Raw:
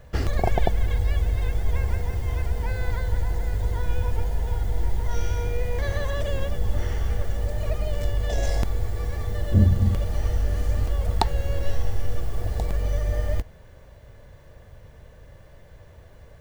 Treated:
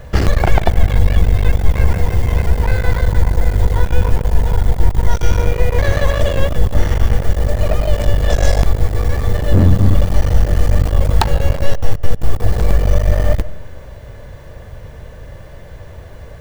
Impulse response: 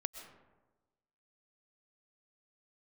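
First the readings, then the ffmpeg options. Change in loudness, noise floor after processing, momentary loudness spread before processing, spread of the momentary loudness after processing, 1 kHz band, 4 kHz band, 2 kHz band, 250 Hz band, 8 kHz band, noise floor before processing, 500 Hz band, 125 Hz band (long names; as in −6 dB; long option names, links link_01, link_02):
+10.0 dB, −35 dBFS, 5 LU, 21 LU, +9.0 dB, +10.0 dB, +11.0 dB, +10.5 dB, can't be measured, −49 dBFS, +11.0 dB, +10.0 dB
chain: -filter_complex "[0:a]aeval=exprs='clip(val(0),-1,0.0422)':channel_layout=same,asplit=2[link_01][link_02];[1:a]atrim=start_sample=2205,highshelf=frequency=5300:gain=-12[link_03];[link_02][link_03]afir=irnorm=-1:irlink=0,volume=-8.5dB[link_04];[link_01][link_04]amix=inputs=2:normalize=0,apsyclip=12.5dB,volume=-1.5dB"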